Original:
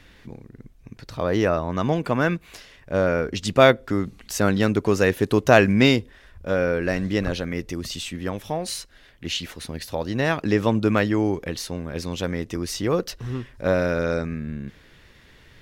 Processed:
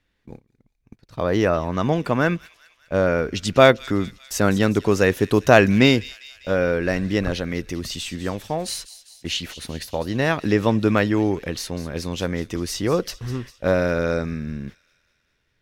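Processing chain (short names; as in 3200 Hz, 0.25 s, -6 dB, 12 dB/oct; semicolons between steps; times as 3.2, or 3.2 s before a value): gate -37 dBFS, range -22 dB; on a send: thin delay 0.199 s, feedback 60%, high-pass 3100 Hz, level -13 dB; on the sum: gain +1.5 dB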